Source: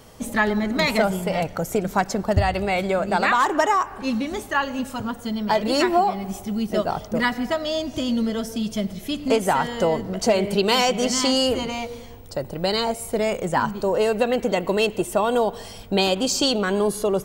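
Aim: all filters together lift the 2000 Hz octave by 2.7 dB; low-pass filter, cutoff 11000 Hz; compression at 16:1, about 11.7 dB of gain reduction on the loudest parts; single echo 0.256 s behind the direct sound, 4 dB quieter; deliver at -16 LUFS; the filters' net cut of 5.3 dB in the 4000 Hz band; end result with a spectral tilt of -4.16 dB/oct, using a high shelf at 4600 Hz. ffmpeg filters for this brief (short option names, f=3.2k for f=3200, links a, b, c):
-af "lowpass=11k,equalizer=f=2k:t=o:g=6,equalizer=f=4k:t=o:g=-6.5,highshelf=f=4.6k:g=-7,acompressor=threshold=-25dB:ratio=16,aecho=1:1:256:0.631,volume=13dB"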